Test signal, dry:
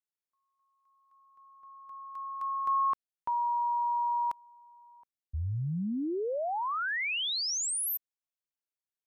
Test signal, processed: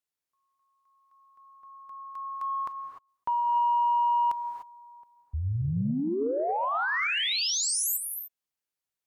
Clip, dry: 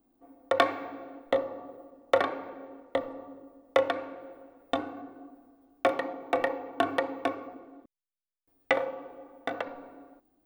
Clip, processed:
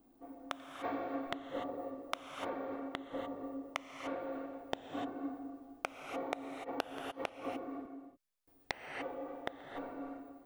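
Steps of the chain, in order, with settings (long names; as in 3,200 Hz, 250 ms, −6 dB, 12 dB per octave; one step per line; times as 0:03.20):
gate with flip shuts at −25 dBFS, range −41 dB
reverb whose tail is shaped and stops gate 320 ms rising, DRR 6 dB
sine wavefolder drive 5 dB, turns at −12 dBFS
level −5.5 dB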